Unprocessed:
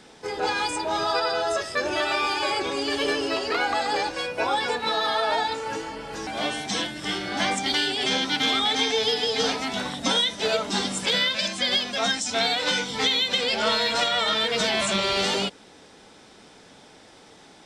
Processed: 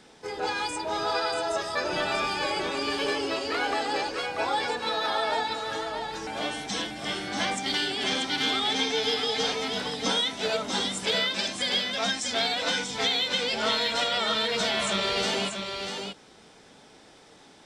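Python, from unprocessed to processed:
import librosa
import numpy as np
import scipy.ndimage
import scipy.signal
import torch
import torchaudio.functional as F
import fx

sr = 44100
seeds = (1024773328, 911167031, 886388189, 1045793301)

y = fx.octave_divider(x, sr, octaves=1, level_db=0.0, at=(1.92, 2.47))
y = y + 10.0 ** (-6.0 / 20.0) * np.pad(y, (int(637 * sr / 1000.0), 0))[:len(y)]
y = y * 10.0 ** (-4.0 / 20.0)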